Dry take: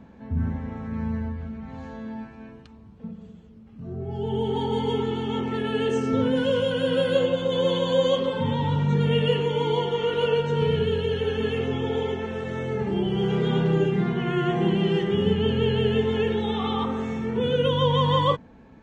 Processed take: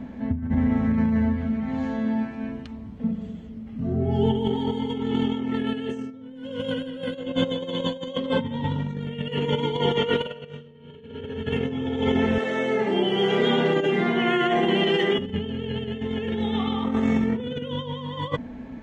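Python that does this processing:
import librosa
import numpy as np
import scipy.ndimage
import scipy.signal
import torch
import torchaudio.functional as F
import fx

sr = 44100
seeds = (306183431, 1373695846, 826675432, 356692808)

y = fx.highpass(x, sr, hz=130.0, slope=6, at=(0.97, 2.43))
y = fx.reverb_throw(y, sr, start_s=10.21, length_s=0.78, rt60_s=2.5, drr_db=-8.0)
y = fx.highpass(y, sr, hz=370.0, slope=12, at=(12.38, 15.19))
y = fx.graphic_eq_31(y, sr, hz=(250, 630, 2000, 3150), db=(12, 6, 7, 4))
y = fx.over_compress(y, sr, threshold_db=-25.0, ratio=-0.5)
y = fx.low_shelf(y, sr, hz=82.0, db=5.5)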